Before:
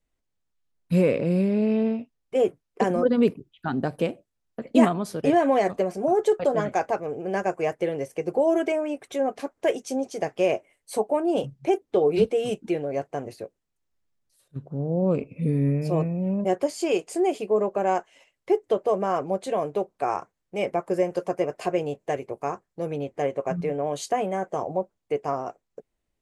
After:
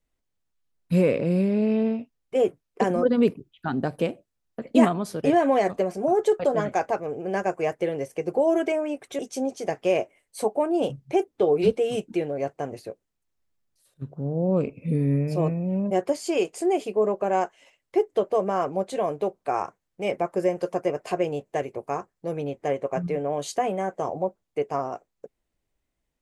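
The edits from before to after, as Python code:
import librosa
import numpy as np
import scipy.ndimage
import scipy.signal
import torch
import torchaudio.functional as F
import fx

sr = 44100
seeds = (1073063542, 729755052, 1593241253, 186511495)

y = fx.edit(x, sr, fx.cut(start_s=9.19, length_s=0.54), tone=tone)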